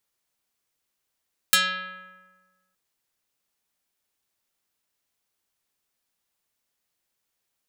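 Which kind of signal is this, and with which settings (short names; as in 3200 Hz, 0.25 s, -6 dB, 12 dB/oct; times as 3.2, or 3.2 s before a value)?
plucked string F#3, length 1.22 s, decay 1.50 s, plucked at 0.5, dark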